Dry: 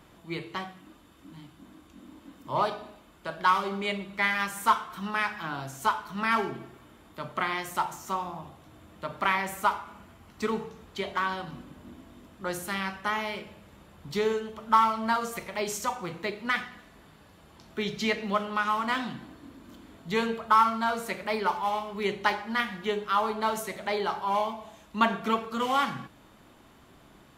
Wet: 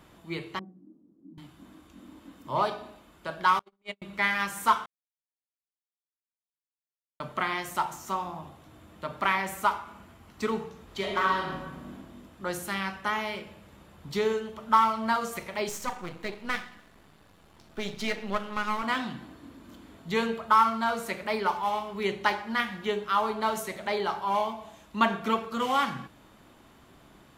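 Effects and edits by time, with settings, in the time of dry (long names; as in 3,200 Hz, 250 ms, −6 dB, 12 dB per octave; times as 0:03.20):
0:00.59–0:01.38: flat-topped band-pass 250 Hz, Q 1.3
0:03.59–0:04.02: noise gate −28 dBFS, range −48 dB
0:04.86–0:07.20: silence
0:10.85–0:11.94: thrown reverb, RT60 1.1 s, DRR −1 dB
0:15.69–0:18.83: gain on one half-wave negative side −12 dB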